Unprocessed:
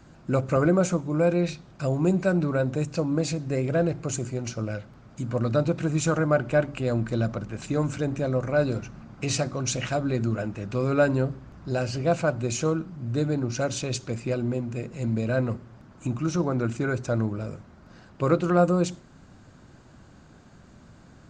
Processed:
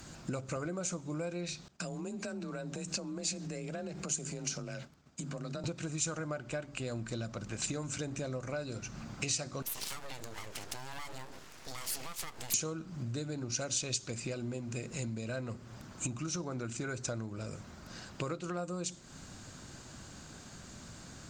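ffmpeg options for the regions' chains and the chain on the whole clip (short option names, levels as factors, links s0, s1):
-filter_complex "[0:a]asettb=1/sr,asplit=3[s0][s1][s2];[s0]atrim=end=1.684[s3];[s1]atrim=start=1.68:end=5.64,asetpts=PTS-STARTPTS,afade=t=in:d=0.004:c=qsin,afade=t=out:st=3.956:d=0.004:c=qsin,agate=range=0.0224:threshold=0.01:ratio=3:release=100:detection=peak,acompressor=threshold=0.0141:ratio=6:attack=3.2:release=140:knee=1:detection=peak,afreqshift=28[s4];[s2]atrim=start=5.636[s5];[s3][s4]acrossfade=d=0.004:c1=hsin:c2=qsin[s6];[s6][s5]acrossfade=d=0.004:c1=qsin:c2=hsin,asettb=1/sr,asplit=3[s7][s8][s9];[s7]atrim=end=9.624[s10];[s8]atrim=start=9.62:end=12.54,asetpts=PTS-STARTPTS,afade=t=in:d=0.004:c=qsin,afade=t=out:st=2.916:d=0.004:c=qsin,bass=f=250:g=-12,treble=f=4000:g=1,acompressor=threshold=0.0112:ratio=10:attack=3.2:release=140:knee=1:detection=peak,aeval=exprs='abs(val(0))':c=same[s11];[s9]atrim=start=12.536[s12];[s10][s11]acrossfade=d=0.004:c1=hsin:c2=qsin[s13];[s13][s12]acrossfade=d=0.004:c1=qsin:c2=hsin,highshelf=f=2300:g=9,acompressor=threshold=0.0178:ratio=10,aemphasis=mode=production:type=cd"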